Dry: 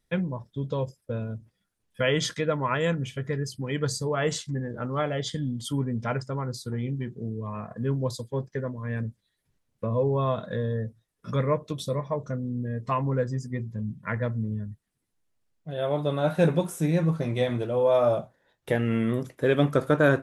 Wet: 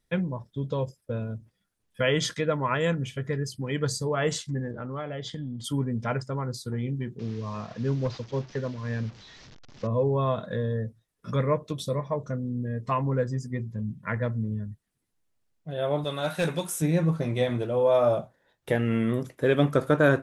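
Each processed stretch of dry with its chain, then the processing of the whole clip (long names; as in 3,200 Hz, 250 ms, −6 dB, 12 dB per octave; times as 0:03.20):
0:04.71–0:05.64: running median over 3 samples + high-frequency loss of the air 77 metres + downward compressor 3 to 1, threshold −32 dBFS
0:07.19–0:09.87: linear delta modulator 32 kbit/s, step −43 dBFS + hard clipping −18.5 dBFS
0:16.04–0:16.82: tilt shelving filter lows −7 dB, about 1,300 Hz + hard clipping −19.5 dBFS
whole clip: no processing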